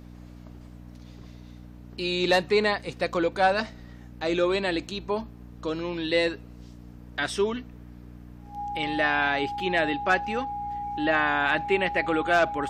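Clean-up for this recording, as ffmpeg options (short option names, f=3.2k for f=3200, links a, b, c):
-af "bandreject=f=60.1:t=h:w=4,bandreject=f=120.2:t=h:w=4,bandreject=f=180.3:t=h:w=4,bandreject=f=240.4:t=h:w=4,bandreject=f=300.5:t=h:w=4,bandreject=f=820:w=30"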